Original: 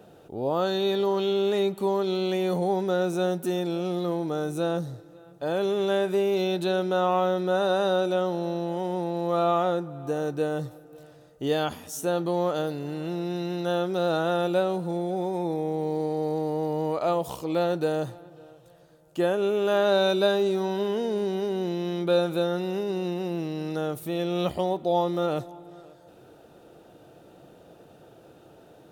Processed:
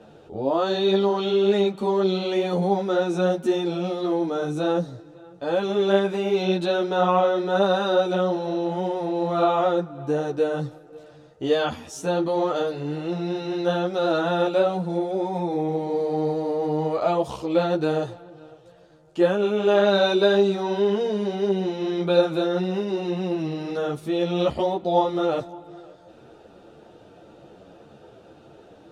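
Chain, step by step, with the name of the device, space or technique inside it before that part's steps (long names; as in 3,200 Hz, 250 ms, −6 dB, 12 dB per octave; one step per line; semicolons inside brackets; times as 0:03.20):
string-machine ensemble chorus (string-ensemble chorus; low-pass filter 6,200 Hz 12 dB per octave)
level +6.5 dB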